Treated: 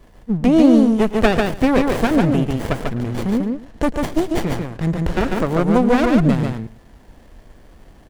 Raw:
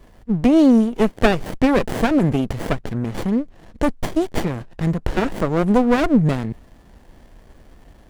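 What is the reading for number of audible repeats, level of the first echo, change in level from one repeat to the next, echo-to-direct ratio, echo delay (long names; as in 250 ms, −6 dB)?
3, −17.5 dB, repeats not evenly spaced, −3.5 dB, 109 ms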